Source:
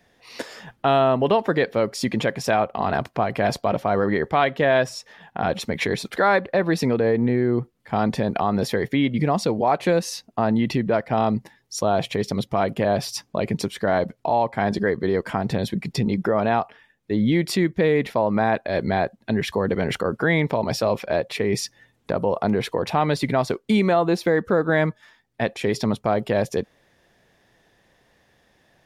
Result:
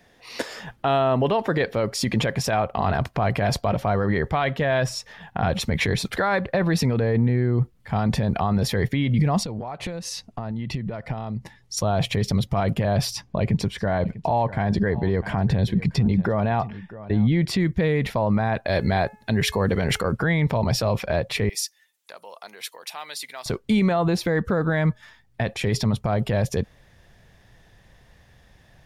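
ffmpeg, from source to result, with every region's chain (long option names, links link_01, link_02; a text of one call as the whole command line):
ffmpeg -i in.wav -filter_complex "[0:a]asettb=1/sr,asplit=3[link_01][link_02][link_03];[link_01]atrim=end=9.434[link_04];[link_02]atrim=start=9.43:end=11.77,asetpts=PTS-STARTPTS,afade=type=in:duration=0.004:curve=qsin,afade=type=out:start_time=2.336:duration=0.004:curve=qsin,lowpass=11000,bandreject=frequency=1600:width=20,acompressor=threshold=-31dB:ratio=12:attack=3.2:release=140:knee=1:detection=peak[link_05];[link_03]atrim=start=11.766[link_06];[link_04][link_05]acrossfade=duration=0.004:curve1=hsin:curve2=qsin[link_07];[link_07][link_06]acrossfade=duration=0.004:curve1=qsin:curve2=hsin,asettb=1/sr,asplit=3[link_08][link_09][link_10];[link_08]atrim=end=13.134[link_11];[link_09]atrim=start=13.13:end=17.6,asetpts=PTS-STARTPTS,afade=type=in:duration=0.004:curve=qsin,afade=type=out:start_time=4.466:duration=0.004:curve=qsin,lowpass=frequency=3200:poles=1,bandreject=frequency=1300:width=12,aecho=1:1:646:0.0891,atrim=end_sample=197127[link_12];[link_10]atrim=start=17.596[link_13];[link_11][link_12]acrossfade=duration=0.004:curve1=hsin:curve2=qsin[link_14];[link_14][link_13]acrossfade=duration=0.004:curve1=qsin:curve2=hsin,asettb=1/sr,asplit=3[link_15][link_16][link_17];[link_15]atrim=end=18.664[link_18];[link_16]atrim=start=18.66:end=20.12,asetpts=PTS-STARTPTS,afade=type=in:duration=0.004:curve=qsin,afade=type=out:start_time=1.456:duration=0.004:curve=qsin,bass=frequency=250:gain=-5,treble=frequency=4000:gain=6,bandreject=frequency=427.1:width_type=h:width=4,bandreject=frequency=854.2:width_type=h:width=4,bandreject=frequency=1281.3:width_type=h:width=4,bandreject=frequency=1708.4:width_type=h:width=4,bandreject=frequency=2135.5:width_type=h:width=4,bandreject=frequency=2562.6:width_type=h:width=4[link_19];[link_17]atrim=start=20.116[link_20];[link_18][link_19]acrossfade=duration=0.004:curve1=hsin:curve2=qsin[link_21];[link_21][link_20]acrossfade=duration=0.004:curve1=qsin:curve2=hsin,asettb=1/sr,asplit=3[link_22][link_23][link_24];[link_22]atrim=end=21.494[link_25];[link_23]atrim=start=21.49:end=23.46,asetpts=PTS-STARTPTS,afade=type=in:duration=0.004:curve=qsin,afade=type=out:start_time=1.966:duration=0.004:curve=qsin,highpass=330,aderivative[link_26];[link_24]atrim=start=23.456[link_27];[link_25][link_26]acrossfade=duration=0.004:curve1=hsin:curve2=qsin[link_28];[link_28][link_27]acrossfade=duration=0.004:curve1=qsin:curve2=hsin,asubboost=boost=5:cutoff=130,alimiter=limit=-16dB:level=0:latency=1:release=35,volume=3.5dB" out.wav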